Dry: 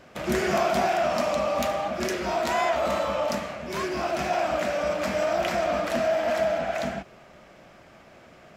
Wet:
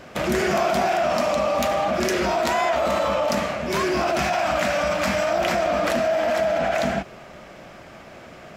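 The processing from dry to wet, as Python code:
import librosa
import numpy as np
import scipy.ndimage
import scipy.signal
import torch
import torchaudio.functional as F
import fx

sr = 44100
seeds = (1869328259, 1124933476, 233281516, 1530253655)

p1 = fx.peak_eq(x, sr, hz=410.0, db=-9.0, octaves=1.1, at=(4.19, 5.3))
p2 = fx.over_compress(p1, sr, threshold_db=-30.0, ratio=-1.0)
y = p1 + (p2 * librosa.db_to_amplitude(0.5))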